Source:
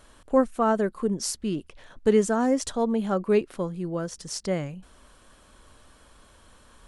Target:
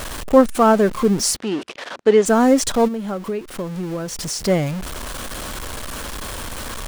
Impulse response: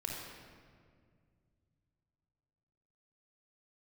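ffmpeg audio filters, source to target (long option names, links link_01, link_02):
-filter_complex "[0:a]aeval=exprs='val(0)+0.5*0.0237*sgn(val(0))':channel_layout=same,asplit=3[link_01][link_02][link_03];[link_01]afade=type=out:start_time=1.35:duration=0.02[link_04];[link_02]highpass=320,lowpass=5100,afade=type=in:start_time=1.35:duration=0.02,afade=type=out:start_time=2.25:duration=0.02[link_05];[link_03]afade=type=in:start_time=2.25:duration=0.02[link_06];[link_04][link_05][link_06]amix=inputs=3:normalize=0,asplit=3[link_07][link_08][link_09];[link_07]afade=type=out:start_time=2.87:duration=0.02[link_10];[link_08]acompressor=threshold=-32dB:ratio=5,afade=type=in:start_time=2.87:duration=0.02,afade=type=out:start_time=4.43:duration=0.02[link_11];[link_09]afade=type=in:start_time=4.43:duration=0.02[link_12];[link_10][link_11][link_12]amix=inputs=3:normalize=0,volume=8dB"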